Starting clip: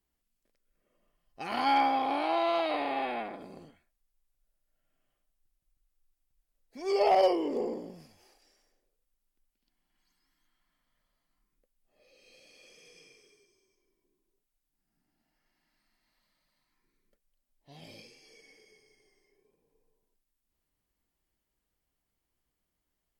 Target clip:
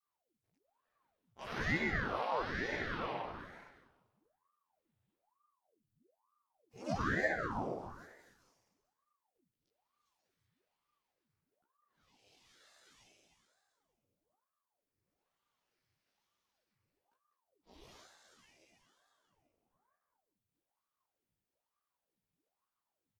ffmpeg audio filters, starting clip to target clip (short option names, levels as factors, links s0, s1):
-filter_complex "[0:a]bandreject=f=64.32:t=h:w=4,bandreject=f=128.64:t=h:w=4,bandreject=f=192.96:t=h:w=4,bandreject=f=257.28:t=h:w=4,bandreject=f=321.6:t=h:w=4,bandreject=f=385.92:t=h:w=4,bandreject=f=450.24:t=h:w=4,bandreject=f=514.56:t=h:w=4,bandreject=f=578.88:t=h:w=4,bandreject=f=643.2:t=h:w=4,bandreject=f=707.52:t=h:w=4,bandreject=f=771.84:t=h:w=4,bandreject=f=836.16:t=h:w=4,bandreject=f=900.48:t=h:w=4,bandreject=f=964.8:t=h:w=4,bandreject=f=1029.12:t=h:w=4,bandreject=f=1093.44:t=h:w=4,bandreject=f=1157.76:t=h:w=4,bandreject=f=1222.08:t=h:w=4,bandreject=f=1286.4:t=h:w=4,bandreject=f=1350.72:t=h:w=4,adynamicequalizer=threshold=0.0158:dfrequency=540:dqfactor=0.8:tfrequency=540:tqfactor=0.8:attack=5:release=100:ratio=0.375:range=2.5:mode=boostabove:tftype=bell,acompressor=threshold=0.0447:ratio=2,flanger=delay=15.5:depth=3.7:speed=1.2,asplit=2[s0][s1];[s1]asetrate=52444,aresample=44100,atempo=0.840896,volume=1[s2];[s0][s2]amix=inputs=2:normalize=0,asplit=2[s3][s4];[s4]asplit=4[s5][s6][s7][s8];[s5]adelay=196,afreqshift=89,volume=0.266[s9];[s6]adelay=392,afreqshift=178,volume=0.0933[s10];[s7]adelay=588,afreqshift=267,volume=0.0327[s11];[s8]adelay=784,afreqshift=356,volume=0.0114[s12];[s9][s10][s11][s12]amix=inputs=4:normalize=0[s13];[s3][s13]amix=inputs=2:normalize=0,aeval=exprs='val(0)*sin(2*PI*650*n/s+650*0.85/1.1*sin(2*PI*1.1*n/s))':c=same,volume=0.531"